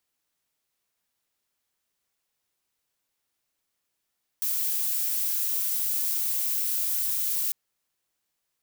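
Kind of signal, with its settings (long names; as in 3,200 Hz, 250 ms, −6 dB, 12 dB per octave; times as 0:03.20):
noise violet, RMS −27 dBFS 3.10 s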